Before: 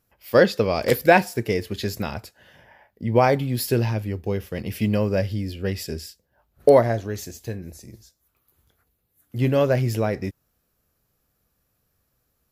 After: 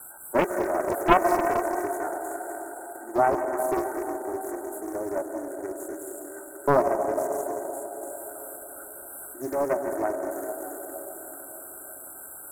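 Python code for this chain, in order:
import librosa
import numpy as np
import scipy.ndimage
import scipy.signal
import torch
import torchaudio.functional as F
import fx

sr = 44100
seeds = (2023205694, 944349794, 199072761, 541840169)

y = x + 0.5 * 10.0 ** (-19.0 / 20.0) * np.diff(np.sign(x), prepend=np.sign(x[:1]))
y = scipy.signal.sosfilt(scipy.signal.ellip(4, 1.0, 40, 310.0, 'highpass', fs=sr, output='sos'), y)
y = fx.peak_eq(y, sr, hz=3900.0, db=-7.5, octaves=0.3)
y = fx.fixed_phaser(y, sr, hz=730.0, stages=8)
y = fx.quant_companded(y, sr, bits=6)
y = fx.brickwall_bandstop(y, sr, low_hz=1600.0, high_hz=7600.0)
y = fx.air_absorb(y, sr, metres=69.0)
y = fx.rev_plate(y, sr, seeds[0], rt60_s=5.0, hf_ratio=0.8, predelay_ms=105, drr_db=2.0)
y = fx.doppler_dist(y, sr, depth_ms=0.67)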